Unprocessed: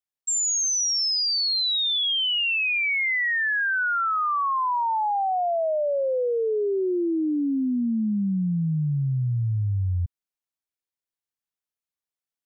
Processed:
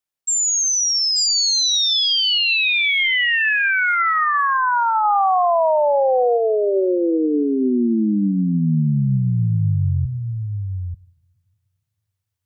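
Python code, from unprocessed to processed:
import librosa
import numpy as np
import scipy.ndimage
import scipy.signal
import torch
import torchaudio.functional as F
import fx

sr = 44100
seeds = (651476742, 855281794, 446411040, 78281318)

y = x + 10.0 ** (-6.0 / 20.0) * np.pad(x, (int(886 * sr / 1000.0), 0))[:len(x)]
y = fx.rev_double_slope(y, sr, seeds[0], early_s=0.8, late_s=3.2, knee_db=-19, drr_db=17.5)
y = fx.env_flatten(y, sr, amount_pct=100, at=(5.03, 6.36), fade=0.02)
y = y * 10.0 ** (5.0 / 20.0)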